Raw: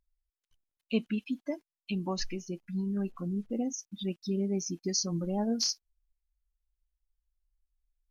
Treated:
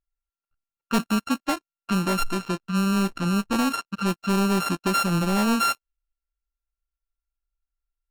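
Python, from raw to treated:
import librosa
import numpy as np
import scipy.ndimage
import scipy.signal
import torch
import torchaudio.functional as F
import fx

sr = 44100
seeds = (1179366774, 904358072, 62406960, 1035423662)

y = np.r_[np.sort(x[:len(x) // 32 * 32].reshape(-1, 32), axis=1).ravel(), x[len(x) // 32 * 32:]]
y = fx.env_lowpass(y, sr, base_hz=2100.0, full_db=-29.0)
y = fx.leveller(y, sr, passes=3)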